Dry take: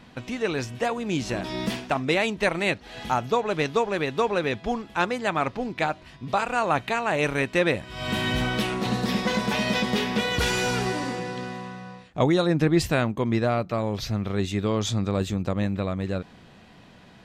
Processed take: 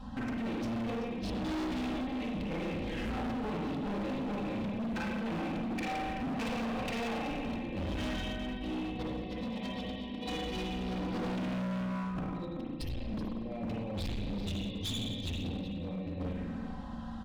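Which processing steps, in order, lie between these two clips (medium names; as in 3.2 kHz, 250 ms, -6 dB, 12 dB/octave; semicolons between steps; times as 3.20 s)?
8.11–10.33 s: chunks repeated in reverse 120 ms, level -3 dB; touch-sensitive phaser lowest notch 350 Hz, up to 1.4 kHz, full sweep at -26 dBFS; bass shelf 310 Hz +9 dB; comb 3.8 ms, depth 88%; compressor with a negative ratio -27 dBFS, ratio -0.5; treble shelf 6.7 kHz -10.5 dB; delay 380 ms -13.5 dB; spring tank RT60 1.4 s, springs 35/48 ms, chirp 75 ms, DRR -3.5 dB; overload inside the chain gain 25 dB; trim -8 dB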